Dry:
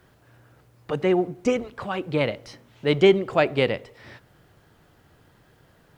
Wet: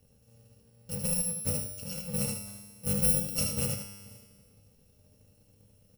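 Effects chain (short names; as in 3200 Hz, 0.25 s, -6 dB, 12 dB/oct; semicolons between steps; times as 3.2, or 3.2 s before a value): FFT order left unsorted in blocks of 128 samples; resonant low shelf 760 Hz +10 dB, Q 1.5; resonator 100 Hz, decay 1.6 s, harmonics all, mix 80%; on a send: echo 77 ms -5.5 dB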